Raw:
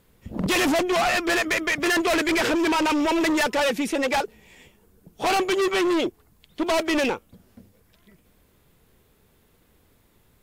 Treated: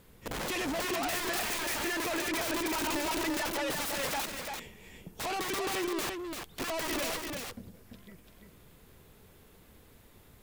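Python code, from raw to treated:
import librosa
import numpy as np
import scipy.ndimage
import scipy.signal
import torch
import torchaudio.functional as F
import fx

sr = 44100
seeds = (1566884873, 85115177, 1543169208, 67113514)

y = fx.over_compress(x, sr, threshold_db=-28.0, ratio=-1.0)
y = (np.mod(10.0 ** (27.5 / 20.0) * y + 1.0, 2.0) - 1.0) / 10.0 ** (27.5 / 20.0)
y = y + 10.0 ** (-5.0 / 20.0) * np.pad(y, (int(341 * sr / 1000.0), 0))[:len(y)]
y = y * librosa.db_to_amplitude(-3.5)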